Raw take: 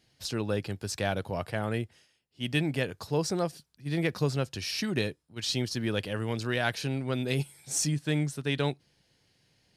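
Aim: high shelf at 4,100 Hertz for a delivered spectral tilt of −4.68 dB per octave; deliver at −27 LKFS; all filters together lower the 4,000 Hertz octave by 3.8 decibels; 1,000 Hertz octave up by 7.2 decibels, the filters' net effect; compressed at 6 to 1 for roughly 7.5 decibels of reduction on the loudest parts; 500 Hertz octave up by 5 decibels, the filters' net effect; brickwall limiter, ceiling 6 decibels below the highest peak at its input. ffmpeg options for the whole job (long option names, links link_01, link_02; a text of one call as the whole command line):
ffmpeg -i in.wav -af "equalizer=frequency=500:width_type=o:gain=4,equalizer=frequency=1000:width_type=o:gain=8.5,equalizer=frequency=4000:width_type=o:gain=-9,highshelf=frequency=4100:gain=5,acompressor=threshold=-27dB:ratio=6,volume=7.5dB,alimiter=limit=-14dB:level=0:latency=1" out.wav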